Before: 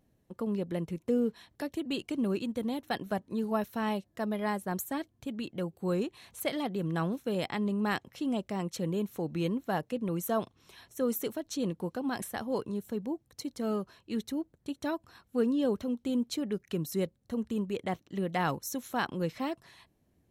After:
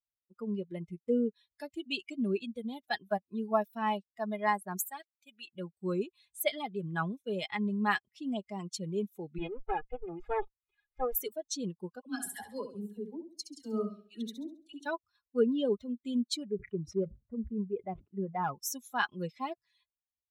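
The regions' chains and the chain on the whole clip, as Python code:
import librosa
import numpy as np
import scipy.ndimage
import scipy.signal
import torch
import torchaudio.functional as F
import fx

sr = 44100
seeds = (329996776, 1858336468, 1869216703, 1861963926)

y = fx.chain(x, sr, fx.highpass(hz=670.0, slope=6),
    fx.high_shelf(hz=11000.0, db=4.0), at=(4.86, 5.48))
y = fx.chain(y, sr, fx.lower_of_two(delay_ms=2.4),
    fx.lowpass(hz=2400.0, slope=12), at=(9.38, 11.15))
y = fx.chain(y, sr, fx.dispersion(late='lows', ms=65.0, hz=1000.0),
    fx.room_flutter(wall_m=11.6, rt60_s=0.85),
    fx.notch_cascade(direction='rising', hz=1.6), at=(12.0, 14.86))
y = fx.chain(y, sr, fx.lowpass(hz=1200.0, slope=12),
    fx.clip_hard(threshold_db=-24.5),
    fx.sustainer(db_per_s=130.0), at=(16.47, 18.55))
y = fx.bin_expand(y, sr, power=2.0)
y = fx.peak_eq(y, sr, hz=140.0, db=-10.0, octaves=2.2)
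y = y + 0.44 * np.pad(y, (int(4.8 * sr / 1000.0), 0))[:len(y)]
y = y * librosa.db_to_amplitude(6.0)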